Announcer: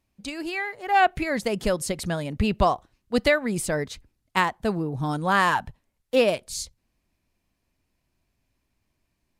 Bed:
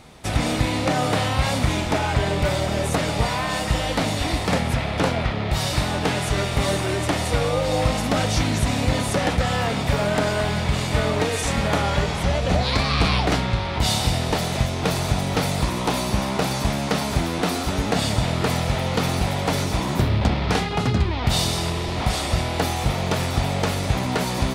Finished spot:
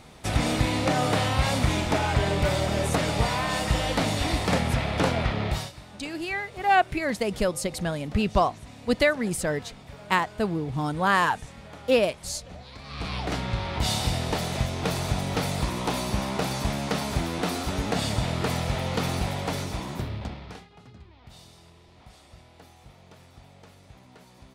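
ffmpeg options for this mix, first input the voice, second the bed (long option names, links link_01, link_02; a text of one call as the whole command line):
ffmpeg -i stem1.wav -i stem2.wav -filter_complex "[0:a]adelay=5750,volume=-1dB[link_01];[1:a]volume=15.5dB,afade=type=out:start_time=5.46:duration=0.26:silence=0.0944061,afade=type=in:start_time=12.81:duration=0.83:silence=0.125893,afade=type=out:start_time=19.15:duration=1.53:silence=0.0668344[link_02];[link_01][link_02]amix=inputs=2:normalize=0" out.wav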